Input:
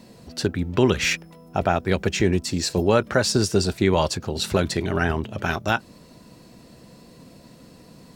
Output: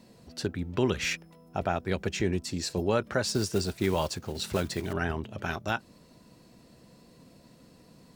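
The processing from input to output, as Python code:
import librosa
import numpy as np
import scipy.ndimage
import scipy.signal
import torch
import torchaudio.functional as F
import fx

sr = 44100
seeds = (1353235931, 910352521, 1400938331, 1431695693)

y = fx.block_float(x, sr, bits=5, at=(3.28, 4.95))
y = y * librosa.db_to_amplitude(-8.0)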